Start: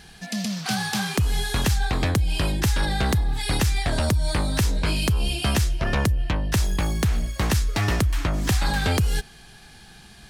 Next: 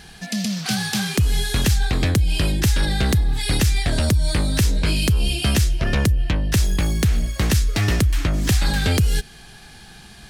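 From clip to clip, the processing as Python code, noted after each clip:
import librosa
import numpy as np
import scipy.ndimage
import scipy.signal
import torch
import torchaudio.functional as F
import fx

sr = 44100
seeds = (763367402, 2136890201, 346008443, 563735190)

y = fx.dynamic_eq(x, sr, hz=940.0, q=1.1, threshold_db=-44.0, ratio=4.0, max_db=-8)
y = y * librosa.db_to_amplitude(4.0)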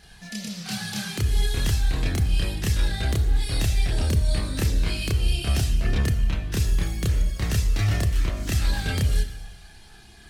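y = fx.rev_schroeder(x, sr, rt60_s=1.2, comb_ms=26, drr_db=8.0)
y = fx.chorus_voices(y, sr, voices=4, hz=0.26, base_ms=29, depth_ms=1.6, mix_pct=55)
y = y * librosa.db_to_amplitude(-4.5)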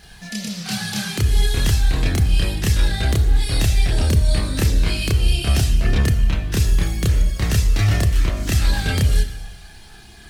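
y = fx.quant_dither(x, sr, seeds[0], bits=12, dither='triangular')
y = y * librosa.db_to_amplitude(5.5)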